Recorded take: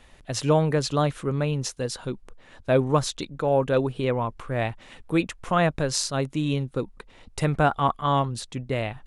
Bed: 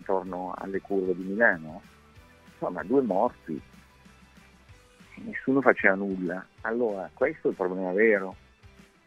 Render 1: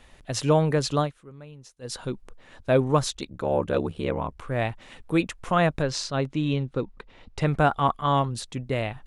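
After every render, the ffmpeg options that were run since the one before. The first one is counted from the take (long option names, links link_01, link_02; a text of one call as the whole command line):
ffmpeg -i in.wav -filter_complex "[0:a]asplit=3[link_01][link_02][link_03];[link_01]afade=type=out:start_time=3.13:duration=0.02[link_04];[link_02]aeval=exprs='val(0)*sin(2*PI*36*n/s)':channel_layout=same,afade=type=in:start_time=3.13:duration=0.02,afade=type=out:start_time=4.41:duration=0.02[link_05];[link_03]afade=type=in:start_time=4.41:duration=0.02[link_06];[link_04][link_05][link_06]amix=inputs=3:normalize=0,asettb=1/sr,asplit=3[link_07][link_08][link_09];[link_07]atrim=end=5.824[link_10];[link_08]atrim=start=5.82:end=7.46,asetpts=PTS-STARTPTS,afade=type=in:duration=0.004:curve=qsin,afade=type=out:start_time=1.636:duration=0.004:curve=qsin,lowpass=4800[link_11];[link_09]atrim=start=7.456[link_12];[link_10][link_11]acrossfade=duration=0.004:curve1=hsin:curve2=qsin[link_13];[link_13][link_12]acrossfade=duration=0.004:curve1=qsin:curve2=hsin,asplit=3[link_14][link_15][link_16];[link_14]atrim=end=1.12,asetpts=PTS-STARTPTS,afade=type=out:start_time=0.99:duration=0.13:silence=0.112202[link_17];[link_15]atrim=start=1.12:end=1.81,asetpts=PTS-STARTPTS,volume=-19dB[link_18];[link_16]atrim=start=1.81,asetpts=PTS-STARTPTS,afade=type=in:duration=0.13:silence=0.112202[link_19];[link_17][link_18][link_19]concat=n=3:v=0:a=1" out.wav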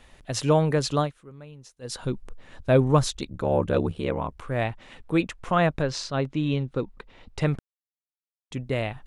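ffmpeg -i in.wav -filter_complex "[0:a]asettb=1/sr,asplit=3[link_01][link_02][link_03];[link_01]atrim=end=2.014[link_04];[link_02]atrim=start=2.01:end=3.95,asetpts=PTS-STARTPTS,afade=type=in:duration=0.004:curve=qsin,afade=type=out:start_time=1.936:duration=0.004:curve=qsin,lowshelf=frequency=180:gain=7[link_05];[link_03]atrim=start=3.946[link_06];[link_04][link_05]acrossfade=duration=0.004:curve1=hsin:curve2=qsin[link_07];[link_07][link_06]acrossfade=duration=0.004:curve1=qsin:curve2=hsin,asettb=1/sr,asplit=3[link_08][link_09][link_10];[link_08]atrim=end=4.644[link_11];[link_09]atrim=start=4.64:end=6.53,asetpts=PTS-STARTPTS,afade=type=in:duration=0.004:curve=qsin,afade=type=out:start_time=1.886:duration=0.004:curve=qsin,highshelf=frequency=8000:gain=-9[link_12];[link_10]atrim=start=6.526[link_13];[link_11][link_12]acrossfade=duration=0.004:curve1=hsin:curve2=qsin[link_14];[link_14][link_13]acrossfade=duration=0.004:curve1=qsin:curve2=hsin,asplit=3[link_15][link_16][link_17];[link_15]atrim=end=7.59,asetpts=PTS-STARTPTS,afade=type=out:start_time=7.586:duration=0.004:curve=hsin[link_18];[link_16]atrim=start=7.59:end=8.51,asetpts=PTS-STARTPTS,volume=0[link_19];[link_17]atrim=start=8.51,asetpts=PTS-STARTPTS,afade=type=in:duration=0.004:curve=hsin[link_20];[link_18][link_19][link_20]concat=n=3:v=0:a=1" out.wav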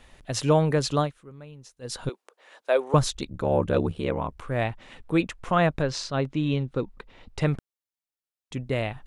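ffmpeg -i in.wav -filter_complex "[0:a]asettb=1/sr,asplit=3[link_01][link_02][link_03];[link_01]atrim=end=2.094[link_04];[link_02]atrim=start=2.09:end=2.94,asetpts=PTS-STARTPTS,afade=type=in:duration=0.004:curve=qsin,afade=type=out:start_time=0.846:duration=0.004:curve=qsin,highpass=frequency=450:width=0.5412,highpass=frequency=450:width=1.3066[link_05];[link_03]atrim=start=2.936[link_06];[link_04][link_05]acrossfade=duration=0.004:curve1=hsin:curve2=qsin[link_07];[link_07][link_06]acrossfade=duration=0.004:curve1=qsin:curve2=hsin" out.wav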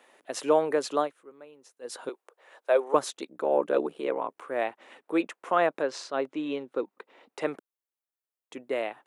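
ffmpeg -i in.wav -af "highpass=frequency=320:width=0.5412,highpass=frequency=320:width=1.3066,equalizer=frequency=4600:width=0.66:gain=-8" out.wav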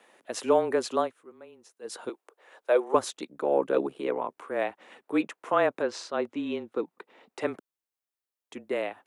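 ffmpeg -i in.wav -af "afreqshift=-26" out.wav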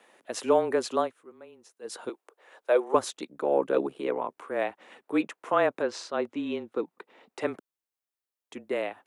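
ffmpeg -i in.wav -af anull out.wav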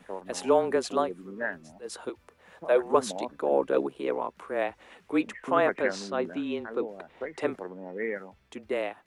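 ffmpeg -i in.wav -i bed.wav -filter_complex "[1:a]volume=-11dB[link_01];[0:a][link_01]amix=inputs=2:normalize=0" out.wav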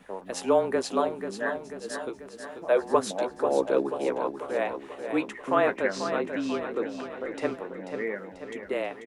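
ffmpeg -i in.wav -filter_complex "[0:a]asplit=2[link_01][link_02];[link_02]adelay=15,volume=-11.5dB[link_03];[link_01][link_03]amix=inputs=2:normalize=0,aecho=1:1:489|978|1467|1956|2445|2934|3423:0.376|0.207|0.114|0.0625|0.0344|0.0189|0.0104" out.wav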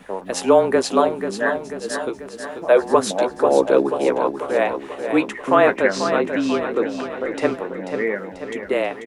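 ffmpeg -i in.wav -af "volume=9dB,alimiter=limit=-3dB:level=0:latency=1" out.wav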